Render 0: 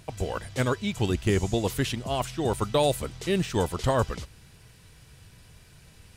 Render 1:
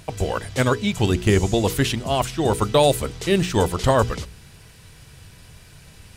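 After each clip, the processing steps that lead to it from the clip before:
mains-hum notches 60/120/180/240/300/360/420/480 Hz
level +7 dB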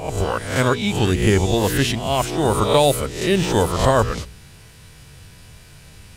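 peak hold with a rise ahead of every peak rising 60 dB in 0.56 s

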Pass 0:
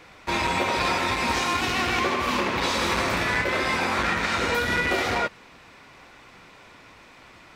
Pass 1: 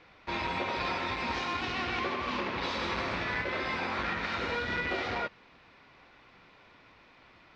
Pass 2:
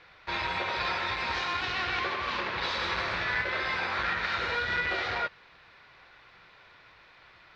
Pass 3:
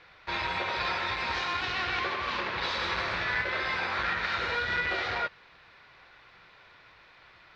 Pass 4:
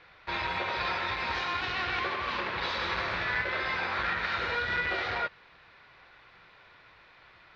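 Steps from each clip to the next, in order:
low-pass filter 4,900 Hz 24 dB per octave; level −8.5 dB
graphic EQ with 15 bands 250 Hz −11 dB, 1,600 Hz +6 dB, 4,000 Hz +5 dB
no processing that can be heard
high-frequency loss of the air 70 metres

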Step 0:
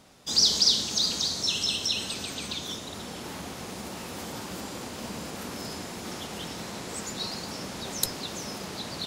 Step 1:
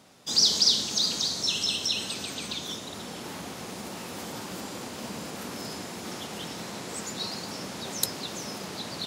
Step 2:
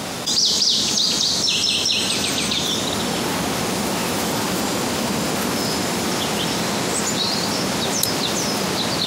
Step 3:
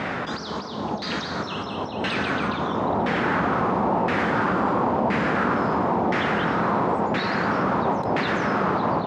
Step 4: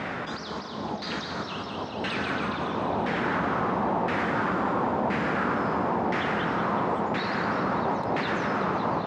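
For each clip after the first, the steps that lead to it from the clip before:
high-pass filter 100 Hz 12 dB per octave
envelope flattener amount 70%; level +2 dB
auto-filter low-pass saw down 0.98 Hz 810–2,000 Hz; level −1 dB
feedback echo with a high-pass in the loop 188 ms, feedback 78%, level −11.5 dB; level −4.5 dB

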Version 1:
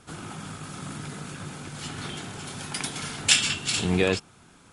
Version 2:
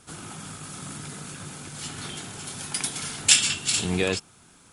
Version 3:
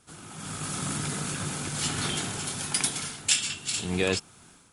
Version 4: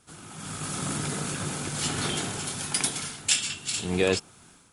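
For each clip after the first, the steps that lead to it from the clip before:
high-shelf EQ 5,600 Hz +11 dB; level −2.5 dB
automatic gain control gain up to 14 dB; level −7.5 dB
dynamic equaliser 480 Hz, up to +4 dB, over −40 dBFS, Q 0.86

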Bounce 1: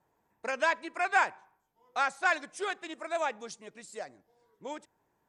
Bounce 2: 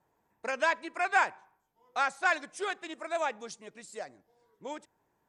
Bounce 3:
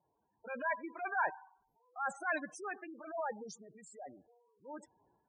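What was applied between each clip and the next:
no processing that can be heard
transient designer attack −9 dB, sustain +8 dB; gate on every frequency bin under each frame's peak −10 dB strong; level −4.5 dB

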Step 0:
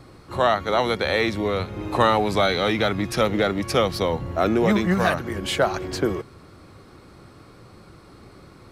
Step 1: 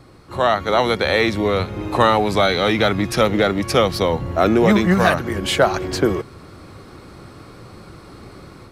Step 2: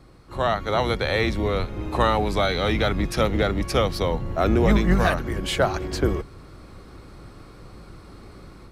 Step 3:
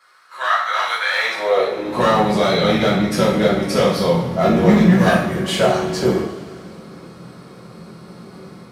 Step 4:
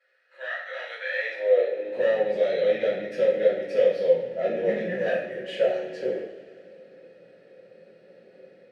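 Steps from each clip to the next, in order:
automatic gain control gain up to 7 dB
sub-octave generator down 2 octaves, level +2 dB; level −6 dB
hard clipping −14.5 dBFS, distortion −17 dB; high-pass filter sweep 1,400 Hz → 190 Hz, 0:01.08–0:02.03; coupled-rooms reverb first 0.58 s, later 3 s, from −18 dB, DRR −7 dB; level −2.5 dB
formant filter e

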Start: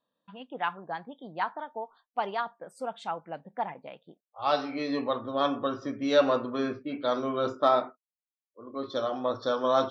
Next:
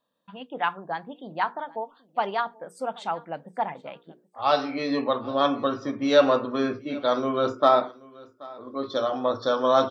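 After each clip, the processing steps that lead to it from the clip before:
mains-hum notches 60/120/180/240/300/360/420/480 Hz
repeating echo 780 ms, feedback 20%, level −22.5 dB
level +4.5 dB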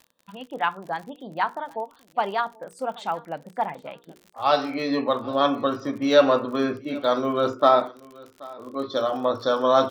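surface crackle 53 per second −38 dBFS
level +1.5 dB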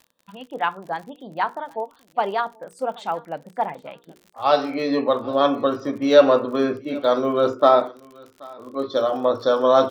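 dynamic equaliser 460 Hz, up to +5 dB, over −34 dBFS, Q 1.1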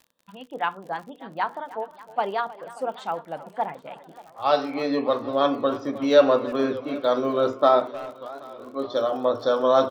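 far-end echo of a speakerphone 310 ms, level −17 dB
feedback echo with a swinging delay time 589 ms, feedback 59%, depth 181 cents, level −20.5 dB
level −3 dB

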